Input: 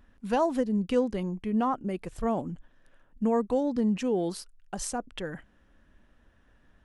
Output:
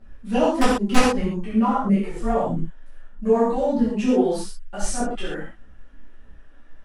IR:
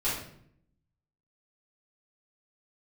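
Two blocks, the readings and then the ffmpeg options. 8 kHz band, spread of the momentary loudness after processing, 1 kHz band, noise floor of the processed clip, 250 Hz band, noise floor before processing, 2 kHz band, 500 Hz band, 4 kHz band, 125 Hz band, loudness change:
+8.0 dB, 12 LU, +8.0 dB, -44 dBFS, +7.0 dB, -63 dBFS, +12.0 dB, +7.0 dB, +11.0 dB, +7.5 dB, +7.0 dB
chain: -filter_complex "[0:a]aphaser=in_gain=1:out_gain=1:delay=4.2:decay=0.65:speed=1.6:type=triangular,aeval=exprs='(mod(3.76*val(0)+1,2)-1)/3.76':c=same[s0];[1:a]atrim=start_sample=2205,atrim=end_sample=3528,asetrate=22932,aresample=44100[s1];[s0][s1]afir=irnorm=-1:irlink=0,volume=0.398"

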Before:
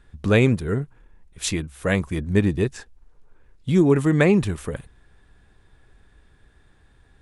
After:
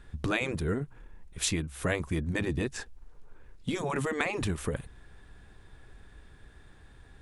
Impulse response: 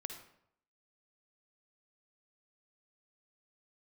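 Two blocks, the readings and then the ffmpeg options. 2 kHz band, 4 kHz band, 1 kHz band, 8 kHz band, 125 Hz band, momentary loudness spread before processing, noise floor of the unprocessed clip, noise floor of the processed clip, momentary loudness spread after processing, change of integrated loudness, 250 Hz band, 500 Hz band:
-5.5 dB, -3.5 dB, -3.5 dB, -2.5 dB, -11.5 dB, 14 LU, -57 dBFS, -55 dBFS, 12 LU, -11.0 dB, -12.5 dB, -11.5 dB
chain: -af "afftfilt=real='re*lt(hypot(re,im),0.631)':imag='im*lt(hypot(re,im),0.631)':win_size=1024:overlap=0.75,acompressor=threshold=0.0251:ratio=2.5,volume=1.33"

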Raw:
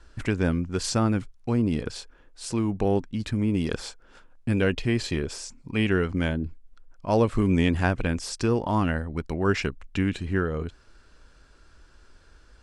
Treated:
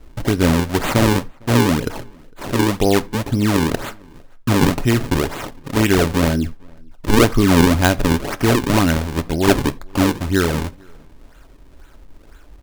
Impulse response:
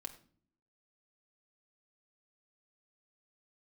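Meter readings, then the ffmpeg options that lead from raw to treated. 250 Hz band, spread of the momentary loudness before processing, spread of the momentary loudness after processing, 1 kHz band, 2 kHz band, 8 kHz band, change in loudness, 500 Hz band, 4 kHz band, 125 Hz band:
+8.5 dB, 11 LU, 11 LU, +10.5 dB, +9.0 dB, +11.0 dB, +8.5 dB, +8.0 dB, +11.0 dB, +8.0 dB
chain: -filter_complex "[0:a]acrusher=samples=39:mix=1:aa=0.000001:lfo=1:lforange=62.4:lforate=2,asplit=2[s0][s1];[s1]adelay=454.8,volume=0.0355,highshelf=f=4000:g=-10.2[s2];[s0][s2]amix=inputs=2:normalize=0,asplit=2[s3][s4];[1:a]atrim=start_sample=2205,afade=t=out:st=0.14:d=0.01,atrim=end_sample=6615[s5];[s4][s5]afir=irnorm=-1:irlink=0,volume=0.944[s6];[s3][s6]amix=inputs=2:normalize=0,volume=1.78"

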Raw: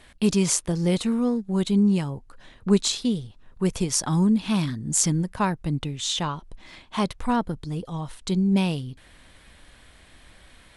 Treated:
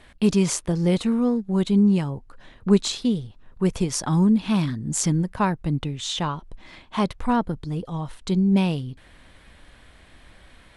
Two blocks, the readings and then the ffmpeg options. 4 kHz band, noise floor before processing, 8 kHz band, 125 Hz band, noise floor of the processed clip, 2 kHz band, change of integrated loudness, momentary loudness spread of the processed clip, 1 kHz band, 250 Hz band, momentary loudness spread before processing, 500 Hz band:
-1.5 dB, -53 dBFS, -4.0 dB, +2.0 dB, -52 dBFS, +0.5 dB, +1.0 dB, 12 LU, +1.5 dB, +2.0 dB, 11 LU, +2.0 dB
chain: -af "highshelf=f=4000:g=-7.5,volume=1.26"

